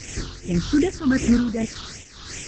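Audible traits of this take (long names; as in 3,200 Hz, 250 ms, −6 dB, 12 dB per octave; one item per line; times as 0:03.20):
a quantiser's noise floor 6 bits, dither triangular
tremolo triangle 1.8 Hz, depth 80%
phaser sweep stages 6, 2.6 Hz, lowest notch 580–1,200 Hz
Opus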